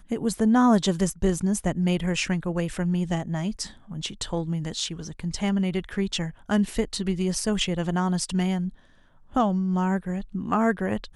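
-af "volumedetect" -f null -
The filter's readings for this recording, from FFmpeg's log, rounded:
mean_volume: -25.5 dB
max_volume: -8.8 dB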